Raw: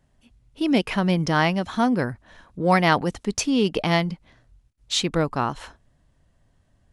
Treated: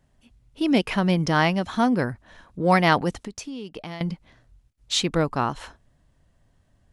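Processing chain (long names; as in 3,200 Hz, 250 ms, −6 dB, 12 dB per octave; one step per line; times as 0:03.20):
0:03.17–0:04.01: downward compressor 8 to 1, threshold −33 dBFS, peak gain reduction 17.5 dB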